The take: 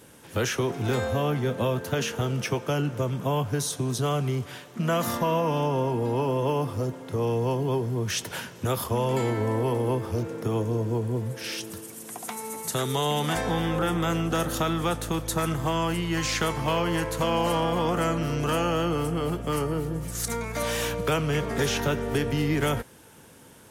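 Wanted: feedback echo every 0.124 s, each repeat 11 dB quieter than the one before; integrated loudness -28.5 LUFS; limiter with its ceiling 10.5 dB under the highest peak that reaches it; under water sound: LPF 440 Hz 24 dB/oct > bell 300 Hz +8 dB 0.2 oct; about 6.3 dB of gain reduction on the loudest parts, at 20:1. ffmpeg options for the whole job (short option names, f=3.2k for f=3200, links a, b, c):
-af "acompressor=threshold=-27dB:ratio=20,alimiter=level_in=3.5dB:limit=-24dB:level=0:latency=1,volume=-3.5dB,lowpass=f=440:w=0.5412,lowpass=f=440:w=1.3066,equalizer=f=300:t=o:w=0.2:g=8,aecho=1:1:124|248|372:0.282|0.0789|0.0221,volume=8.5dB"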